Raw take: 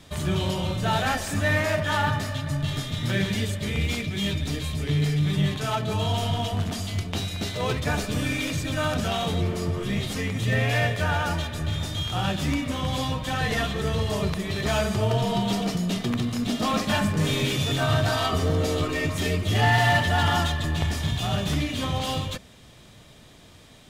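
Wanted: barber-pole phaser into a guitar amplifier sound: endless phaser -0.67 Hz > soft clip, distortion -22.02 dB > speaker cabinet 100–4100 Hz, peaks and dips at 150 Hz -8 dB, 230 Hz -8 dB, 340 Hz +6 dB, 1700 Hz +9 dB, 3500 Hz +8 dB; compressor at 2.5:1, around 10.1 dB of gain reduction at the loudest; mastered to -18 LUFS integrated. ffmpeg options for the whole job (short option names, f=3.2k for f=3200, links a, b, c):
-filter_complex "[0:a]acompressor=threshold=-32dB:ratio=2.5,asplit=2[a][b];[b]afreqshift=-0.67[c];[a][c]amix=inputs=2:normalize=1,asoftclip=threshold=-26dB,highpass=100,equalizer=f=150:t=q:w=4:g=-8,equalizer=f=230:t=q:w=4:g=-8,equalizer=f=340:t=q:w=4:g=6,equalizer=f=1.7k:t=q:w=4:g=9,equalizer=f=3.5k:t=q:w=4:g=8,lowpass=f=4.1k:w=0.5412,lowpass=f=4.1k:w=1.3066,volume=17dB"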